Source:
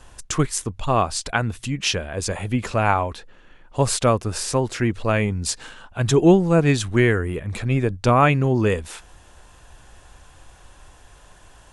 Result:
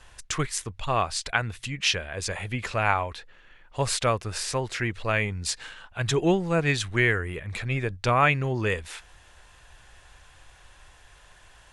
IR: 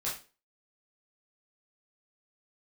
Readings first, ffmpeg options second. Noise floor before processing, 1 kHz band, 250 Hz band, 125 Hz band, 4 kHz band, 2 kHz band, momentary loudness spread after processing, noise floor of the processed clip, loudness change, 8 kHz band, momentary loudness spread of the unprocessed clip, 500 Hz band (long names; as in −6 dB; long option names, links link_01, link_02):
−50 dBFS, −4.5 dB, −10.0 dB, −7.5 dB, −1.0 dB, 0.0 dB, 10 LU, −54 dBFS, −5.5 dB, −4.5 dB, 11 LU, −7.0 dB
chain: -af "equalizer=frequency=250:width_type=o:width=1:gain=-6,equalizer=frequency=2000:width_type=o:width=1:gain=7,equalizer=frequency=4000:width_type=o:width=1:gain=4,volume=-6dB"